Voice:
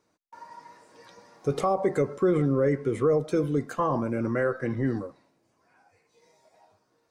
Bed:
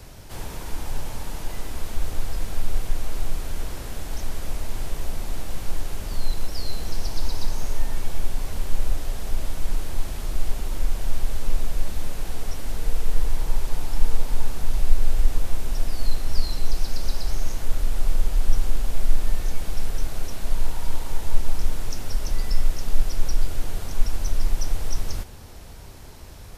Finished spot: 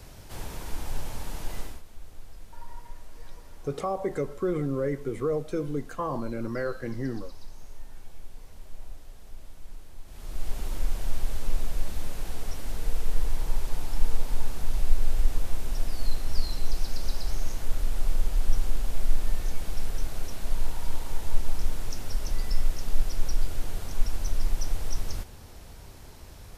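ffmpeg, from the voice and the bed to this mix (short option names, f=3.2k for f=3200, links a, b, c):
-filter_complex "[0:a]adelay=2200,volume=-5dB[a];[1:a]volume=11dB,afade=t=out:st=1.6:d=0.22:silence=0.177828,afade=t=in:st=10.05:d=0.58:silence=0.188365[b];[a][b]amix=inputs=2:normalize=0"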